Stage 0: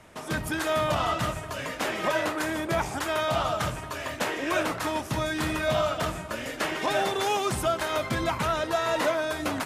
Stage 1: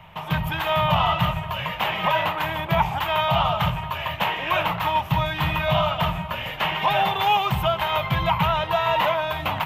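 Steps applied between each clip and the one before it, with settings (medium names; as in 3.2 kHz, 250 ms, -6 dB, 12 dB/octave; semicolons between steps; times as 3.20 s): FFT filter 120 Hz 0 dB, 170 Hz +4 dB, 260 Hz -20 dB, 570 Hz -9 dB, 910 Hz +4 dB, 1.5 kHz -8 dB, 3 kHz +3 dB, 5 kHz -17 dB, 9.7 kHz -24 dB, 15 kHz +5 dB; trim +8 dB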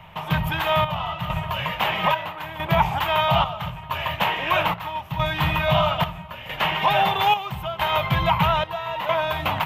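square tremolo 0.77 Hz, depth 65%, duty 65%; trim +1.5 dB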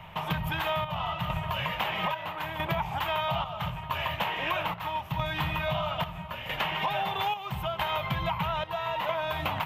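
compression, threshold -26 dBFS, peak gain reduction 12.5 dB; trim -1 dB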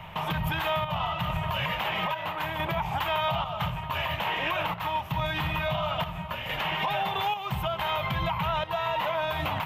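peak limiter -23 dBFS, peak gain reduction 7.5 dB; trim +3.5 dB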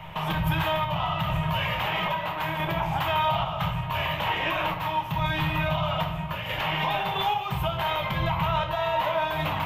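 simulated room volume 95 m³, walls mixed, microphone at 0.58 m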